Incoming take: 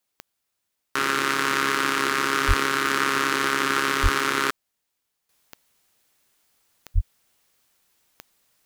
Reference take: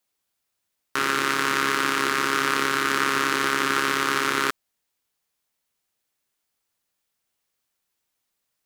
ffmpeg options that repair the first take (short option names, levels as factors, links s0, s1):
-filter_complex "[0:a]adeclick=t=4,asplit=3[s0][s1][s2];[s0]afade=t=out:st=2.47:d=0.02[s3];[s1]highpass=f=140:w=0.5412,highpass=f=140:w=1.3066,afade=t=in:st=2.47:d=0.02,afade=t=out:st=2.59:d=0.02[s4];[s2]afade=t=in:st=2.59:d=0.02[s5];[s3][s4][s5]amix=inputs=3:normalize=0,asplit=3[s6][s7][s8];[s6]afade=t=out:st=4.02:d=0.02[s9];[s7]highpass=f=140:w=0.5412,highpass=f=140:w=1.3066,afade=t=in:st=4.02:d=0.02,afade=t=out:st=4.14:d=0.02[s10];[s8]afade=t=in:st=4.14:d=0.02[s11];[s9][s10][s11]amix=inputs=3:normalize=0,asplit=3[s12][s13][s14];[s12]afade=t=out:st=6.94:d=0.02[s15];[s13]highpass=f=140:w=0.5412,highpass=f=140:w=1.3066,afade=t=in:st=6.94:d=0.02,afade=t=out:st=7.06:d=0.02[s16];[s14]afade=t=in:st=7.06:d=0.02[s17];[s15][s16][s17]amix=inputs=3:normalize=0,asetnsamples=n=441:p=0,asendcmd='5.29 volume volume -11.5dB',volume=1"